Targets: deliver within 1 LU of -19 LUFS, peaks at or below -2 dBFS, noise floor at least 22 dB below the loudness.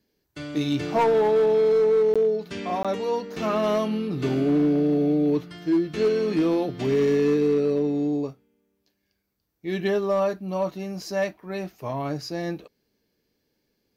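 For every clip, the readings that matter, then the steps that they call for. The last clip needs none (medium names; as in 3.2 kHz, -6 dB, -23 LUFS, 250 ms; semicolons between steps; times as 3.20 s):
clipped samples 1.6%; clipping level -16.0 dBFS; dropouts 2; longest dropout 16 ms; loudness -24.0 LUFS; peak level -16.0 dBFS; loudness target -19.0 LUFS
-> clip repair -16 dBFS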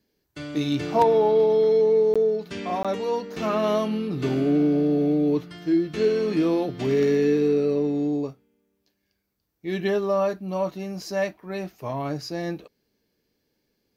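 clipped samples 0.0%; dropouts 2; longest dropout 16 ms
-> interpolate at 2.14/2.83 s, 16 ms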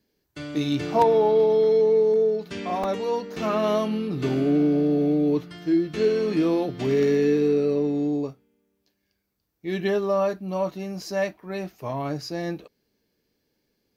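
dropouts 0; loudness -23.5 LUFS; peak level -7.0 dBFS; loudness target -19.0 LUFS
-> trim +4.5 dB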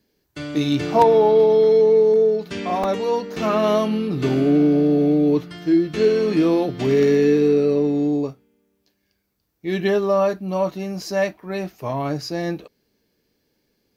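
loudness -19.0 LUFS; peak level -2.5 dBFS; noise floor -71 dBFS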